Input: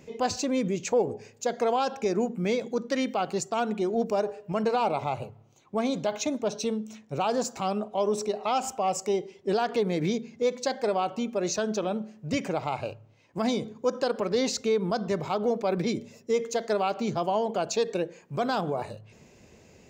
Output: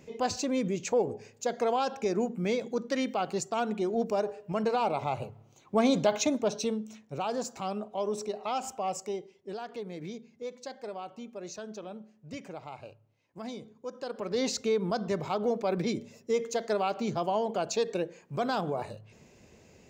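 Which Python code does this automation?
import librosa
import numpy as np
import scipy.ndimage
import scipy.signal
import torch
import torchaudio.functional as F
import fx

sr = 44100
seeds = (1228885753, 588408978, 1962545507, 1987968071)

y = fx.gain(x, sr, db=fx.line((4.95, -2.5), (5.97, 4.0), (7.15, -5.5), (8.92, -5.5), (9.49, -13.0), (13.94, -13.0), (14.45, -2.5)))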